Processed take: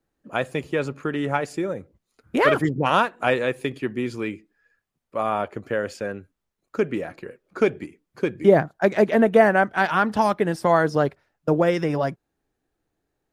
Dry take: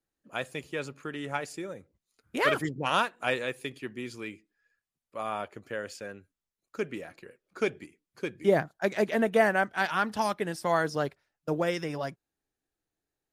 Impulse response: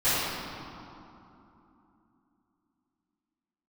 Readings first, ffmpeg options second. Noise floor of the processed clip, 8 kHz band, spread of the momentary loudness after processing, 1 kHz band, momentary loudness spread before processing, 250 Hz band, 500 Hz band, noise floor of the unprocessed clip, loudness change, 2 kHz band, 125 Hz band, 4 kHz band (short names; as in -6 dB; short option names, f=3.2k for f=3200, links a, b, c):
-80 dBFS, n/a, 14 LU, +8.0 dB, 15 LU, +10.0 dB, +9.0 dB, under -85 dBFS, +8.0 dB, +5.5 dB, +10.0 dB, +2.5 dB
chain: -filter_complex "[0:a]highshelf=f=2.2k:g=-11,asplit=2[a][b];[b]acompressor=threshold=-33dB:ratio=6,volume=-1dB[c];[a][c]amix=inputs=2:normalize=0,volume=7dB"